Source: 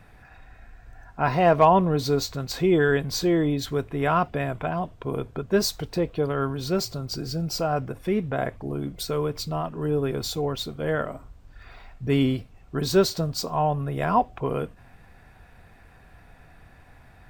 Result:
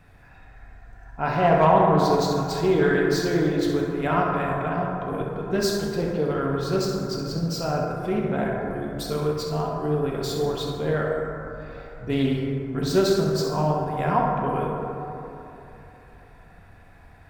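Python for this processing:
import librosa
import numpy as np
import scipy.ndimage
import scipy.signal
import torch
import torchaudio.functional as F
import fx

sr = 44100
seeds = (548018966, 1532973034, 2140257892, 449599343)

y = fx.room_flutter(x, sr, wall_m=11.3, rt60_s=0.39)
y = fx.rev_plate(y, sr, seeds[0], rt60_s=3.2, hf_ratio=0.3, predelay_ms=0, drr_db=-1.5)
y = fx.doppler_dist(y, sr, depth_ms=0.2)
y = y * 10.0 ** (-3.5 / 20.0)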